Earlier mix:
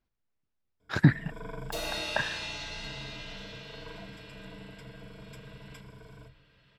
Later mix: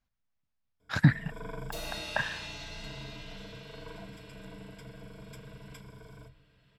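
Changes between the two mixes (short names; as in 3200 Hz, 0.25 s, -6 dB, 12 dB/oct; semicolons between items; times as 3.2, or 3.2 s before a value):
speech: add bell 380 Hz -15 dB 0.49 oct; second sound -5.5 dB; master: add high shelf 8000 Hz +4.5 dB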